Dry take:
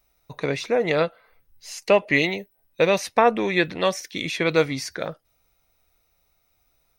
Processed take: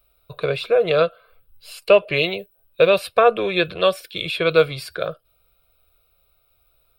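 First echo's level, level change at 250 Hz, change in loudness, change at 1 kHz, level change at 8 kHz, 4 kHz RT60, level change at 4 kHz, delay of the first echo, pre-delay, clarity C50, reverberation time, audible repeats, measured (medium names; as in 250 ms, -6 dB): no echo, -3.0 dB, +3.0 dB, +1.0 dB, no reading, no reverb, +4.5 dB, no echo, no reverb, no reverb, no reverb, no echo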